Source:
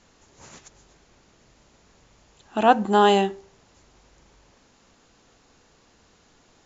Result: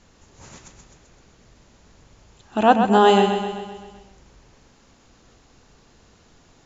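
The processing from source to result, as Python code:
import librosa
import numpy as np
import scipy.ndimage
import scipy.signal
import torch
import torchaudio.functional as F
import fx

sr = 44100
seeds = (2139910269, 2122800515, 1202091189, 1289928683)

p1 = fx.low_shelf(x, sr, hz=170.0, db=7.5)
p2 = p1 + fx.echo_feedback(p1, sr, ms=129, feedback_pct=57, wet_db=-7, dry=0)
y = p2 * librosa.db_to_amplitude(1.0)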